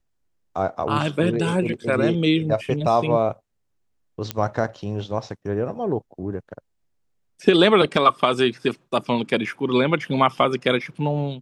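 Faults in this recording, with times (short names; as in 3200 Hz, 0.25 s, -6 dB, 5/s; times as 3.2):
4.31 pop -9 dBFS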